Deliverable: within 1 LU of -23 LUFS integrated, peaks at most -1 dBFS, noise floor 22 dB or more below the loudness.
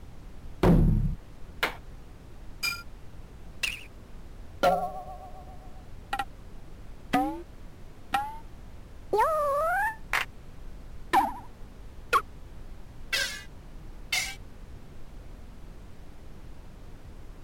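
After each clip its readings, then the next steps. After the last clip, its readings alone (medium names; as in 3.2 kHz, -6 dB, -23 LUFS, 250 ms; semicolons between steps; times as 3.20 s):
clipped samples 0.4%; clipping level -16.0 dBFS; noise floor -48 dBFS; noise floor target -51 dBFS; loudness -29.0 LUFS; peak level -16.0 dBFS; loudness target -23.0 LUFS
-> clip repair -16 dBFS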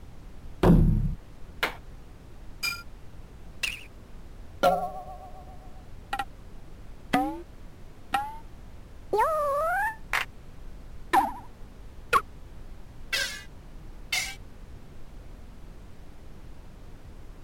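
clipped samples 0.0%; noise floor -48 dBFS; noise floor target -50 dBFS
-> noise print and reduce 6 dB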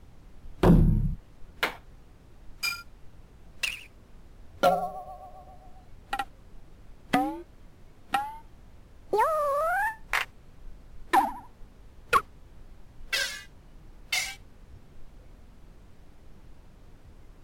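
noise floor -54 dBFS; loudness -28.0 LUFS; peak level -7.0 dBFS; loudness target -23.0 LUFS
-> trim +5 dB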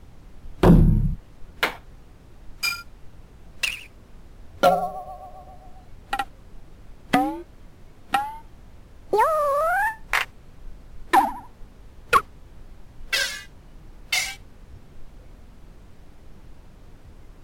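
loudness -23.0 LUFS; peak level -2.0 dBFS; noise floor -49 dBFS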